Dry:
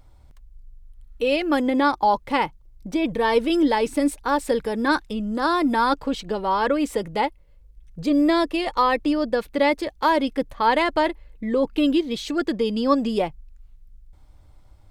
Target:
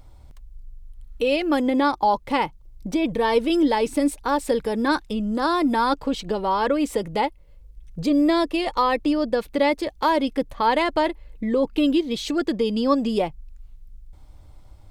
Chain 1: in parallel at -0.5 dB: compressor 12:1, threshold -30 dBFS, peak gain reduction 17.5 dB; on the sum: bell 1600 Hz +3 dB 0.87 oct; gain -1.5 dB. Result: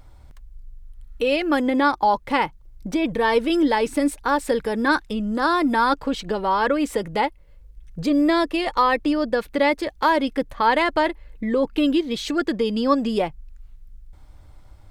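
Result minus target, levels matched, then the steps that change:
2000 Hz band +4.0 dB
change: bell 1600 Hz -3 dB 0.87 oct

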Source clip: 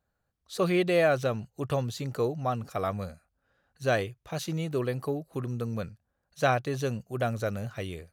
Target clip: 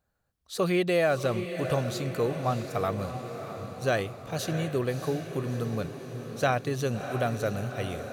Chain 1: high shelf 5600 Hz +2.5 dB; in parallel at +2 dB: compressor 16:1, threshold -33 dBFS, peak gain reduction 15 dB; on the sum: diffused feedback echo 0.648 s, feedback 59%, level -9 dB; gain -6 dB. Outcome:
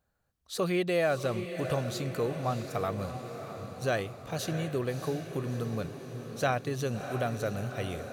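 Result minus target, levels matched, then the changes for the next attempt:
compressor: peak gain reduction +9.5 dB
change: compressor 16:1, threshold -23 dBFS, peak gain reduction 5.5 dB

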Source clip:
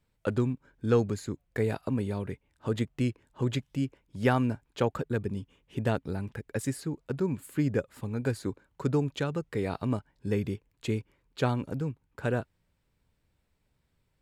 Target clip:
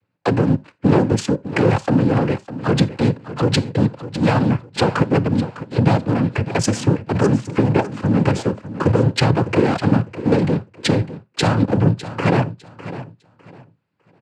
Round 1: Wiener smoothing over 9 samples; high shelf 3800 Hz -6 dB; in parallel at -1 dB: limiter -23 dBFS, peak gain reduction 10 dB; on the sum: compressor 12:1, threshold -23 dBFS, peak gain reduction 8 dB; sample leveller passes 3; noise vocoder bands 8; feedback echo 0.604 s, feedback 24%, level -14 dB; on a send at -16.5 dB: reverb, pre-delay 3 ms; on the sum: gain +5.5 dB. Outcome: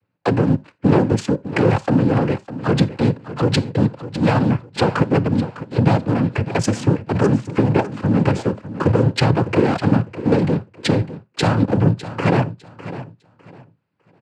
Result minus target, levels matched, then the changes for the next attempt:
8000 Hz band -3.5 dB
remove: high shelf 3800 Hz -6 dB

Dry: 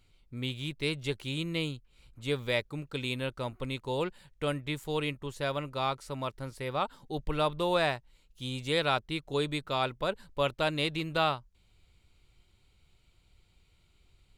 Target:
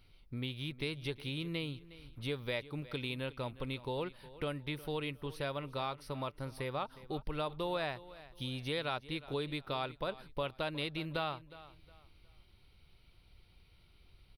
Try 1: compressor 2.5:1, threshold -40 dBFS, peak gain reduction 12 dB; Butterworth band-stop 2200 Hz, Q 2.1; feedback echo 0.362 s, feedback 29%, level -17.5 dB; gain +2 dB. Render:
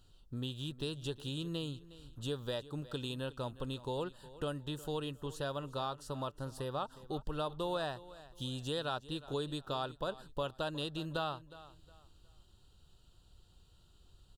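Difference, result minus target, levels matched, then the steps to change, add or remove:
8000 Hz band +6.5 dB
change: Butterworth band-stop 7300 Hz, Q 2.1

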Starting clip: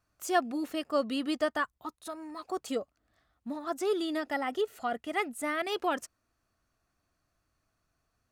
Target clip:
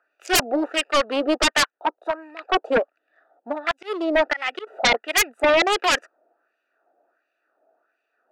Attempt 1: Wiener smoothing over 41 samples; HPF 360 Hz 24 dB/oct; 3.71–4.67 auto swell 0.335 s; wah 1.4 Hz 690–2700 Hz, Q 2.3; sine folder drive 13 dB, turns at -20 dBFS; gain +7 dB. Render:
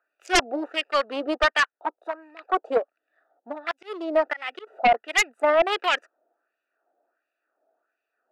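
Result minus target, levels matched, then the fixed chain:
sine folder: distortion -9 dB
Wiener smoothing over 41 samples; HPF 360 Hz 24 dB/oct; 3.71–4.67 auto swell 0.335 s; wah 1.4 Hz 690–2700 Hz, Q 2.3; sine folder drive 20 dB, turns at -20 dBFS; gain +7 dB

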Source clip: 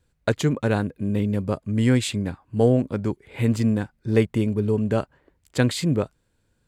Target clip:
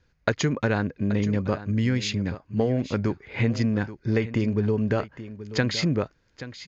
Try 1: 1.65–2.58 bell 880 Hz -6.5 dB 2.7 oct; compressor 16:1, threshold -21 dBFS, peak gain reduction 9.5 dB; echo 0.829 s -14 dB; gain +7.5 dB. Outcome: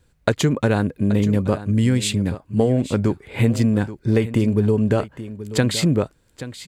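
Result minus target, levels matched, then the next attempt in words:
8000 Hz band +3.0 dB
1.65–2.58 bell 880 Hz -6.5 dB 2.7 oct; compressor 16:1, threshold -21 dBFS, peak gain reduction 9.5 dB; rippled Chebyshev low-pass 6800 Hz, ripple 6 dB; echo 0.829 s -14 dB; gain +7.5 dB

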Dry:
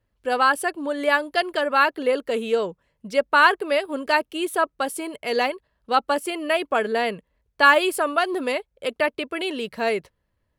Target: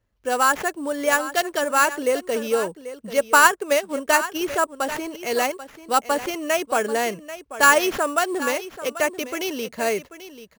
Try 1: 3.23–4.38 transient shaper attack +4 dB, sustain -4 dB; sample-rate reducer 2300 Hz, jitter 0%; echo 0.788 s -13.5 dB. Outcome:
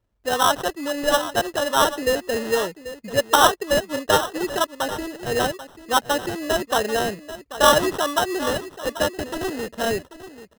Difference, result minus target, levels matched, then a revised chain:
sample-rate reducer: distortion +15 dB
3.23–4.38 transient shaper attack +4 dB, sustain -4 dB; sample-rate reducer 8700 Hz, jitter 0%; echo 0.788 s -13.5 dB

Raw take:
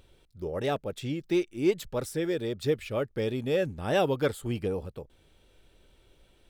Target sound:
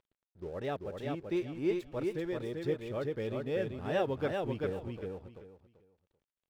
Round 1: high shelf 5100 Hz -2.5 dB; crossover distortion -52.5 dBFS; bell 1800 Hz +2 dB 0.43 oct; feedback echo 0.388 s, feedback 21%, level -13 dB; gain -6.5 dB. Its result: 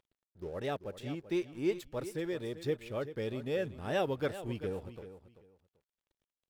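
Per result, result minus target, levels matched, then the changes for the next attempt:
8000 Hz band +7.5 dB; echo-to-direct -9.5 dB
change: high shelf 5100 Hz -13.5 dB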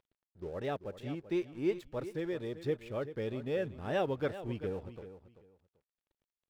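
echo-to-direct -9.5 dB
change: feedback echo 0.388 s, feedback 21%, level -3.5 dB

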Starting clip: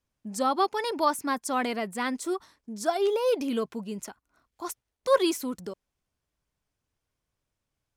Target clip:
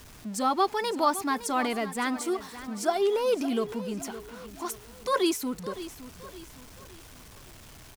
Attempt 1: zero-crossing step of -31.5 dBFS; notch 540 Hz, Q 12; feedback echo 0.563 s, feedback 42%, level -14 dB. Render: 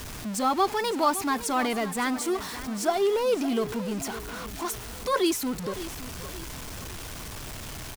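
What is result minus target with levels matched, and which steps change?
zero-crossing step: distortion +10 dB
change: zero-crossing step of -42.5 dBFS

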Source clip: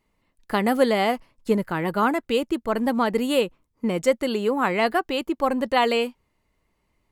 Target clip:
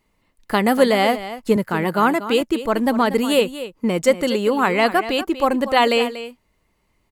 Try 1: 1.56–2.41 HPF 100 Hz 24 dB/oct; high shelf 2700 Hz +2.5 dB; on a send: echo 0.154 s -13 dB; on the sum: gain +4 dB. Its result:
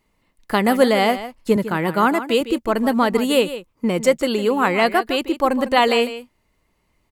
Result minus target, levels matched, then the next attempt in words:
echo 84 ms early
1.56–2.41 HPF 100 Hz 24 dB/oct; high shelf 2700 Hz +2.5 dB; on a send: echo 0.238 s -13 dB; on the sum: gain +4 dB

